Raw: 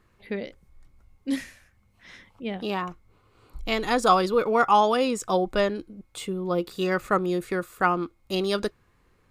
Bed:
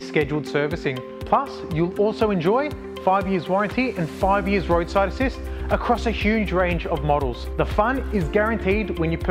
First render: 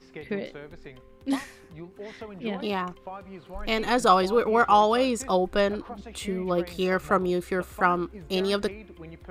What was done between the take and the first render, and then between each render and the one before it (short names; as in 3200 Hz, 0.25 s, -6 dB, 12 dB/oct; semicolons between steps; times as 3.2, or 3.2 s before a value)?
add bed -20.5 dB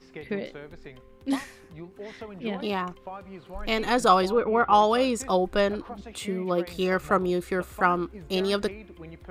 4.32–4.73 air absorption 370 m; 6.11–6.66 HPF 81 Hz -> 180 Hz 24 dB/oct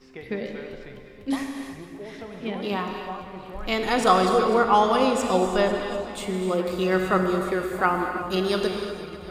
echo with dull and thin repeats by turns 0.124 s, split 1100 Hz, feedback 83%, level -13 dB; non-linear reverb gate 0.37 s flat, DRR 3.5 dB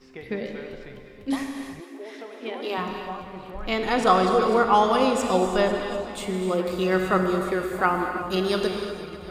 1.8–2.78 brick-wall FIR high-pass 230 Hz; 3.51–4.42 high shelf 6200 Hz -8.5 dB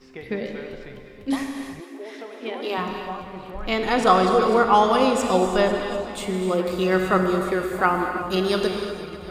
gain +2 dB